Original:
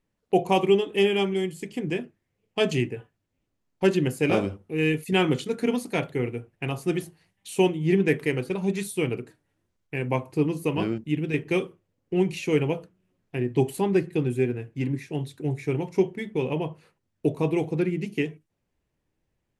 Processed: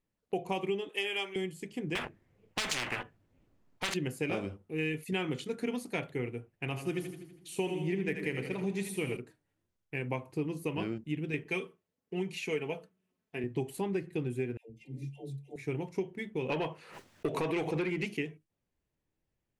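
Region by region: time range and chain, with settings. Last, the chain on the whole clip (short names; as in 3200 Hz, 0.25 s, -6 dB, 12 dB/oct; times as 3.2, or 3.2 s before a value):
0.89–1.36 HPF 500 Hz + tilt +1.5 dB/oct
1.95–3.94 sample leveller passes 2 + high shelf 2700 Hz -12 dB + spectral compressor 10:1
6.54–9.17 short-mantissa float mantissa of 8-bit + split-band echo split 400 Hz, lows 0.111 s, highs 81 ms, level -8 dB
11.46–13.44 HPF 44 Hz + low shelf 230 Hz -8 dB + comb 4.6 ms, depth 50%
14.57–15.56 Butterworth band-stop 1400 Hz, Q 0.73 + metallic resonator 66 Hz, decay 0.25 s, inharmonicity 0.03 + dispersion lows, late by 0.126 s, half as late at 560 Hz
16.49–18.17 gate with hold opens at -50 dBFS, closes at -53 dBFS + overdrive pedal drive 19 dB, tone 5200 Hz, clips at -11.5 dBFS + backwards sustainer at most 77 dB/s
whole clip: dynamic EQ 2200 Hz, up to +4 dB, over -40 dBFS, Q 1.5; compressor, threshold -22 dBFS; gain -7 dB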